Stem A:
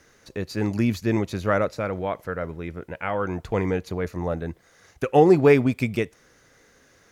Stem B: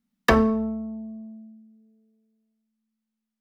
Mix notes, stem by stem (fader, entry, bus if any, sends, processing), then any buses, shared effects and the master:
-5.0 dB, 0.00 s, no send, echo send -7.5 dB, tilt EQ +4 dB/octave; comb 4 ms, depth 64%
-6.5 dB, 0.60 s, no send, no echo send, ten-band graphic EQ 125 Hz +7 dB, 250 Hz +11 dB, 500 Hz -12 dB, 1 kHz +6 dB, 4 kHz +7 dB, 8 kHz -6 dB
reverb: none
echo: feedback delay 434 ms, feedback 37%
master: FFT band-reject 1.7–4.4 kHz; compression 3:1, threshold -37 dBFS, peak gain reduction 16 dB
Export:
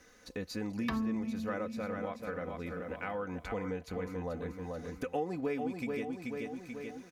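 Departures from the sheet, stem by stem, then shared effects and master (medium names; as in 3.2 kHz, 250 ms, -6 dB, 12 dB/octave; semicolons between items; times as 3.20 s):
stem A: missing tilt EQ +4 dB/octave; master: missing FFT band-reject 1.7–4.4 kHz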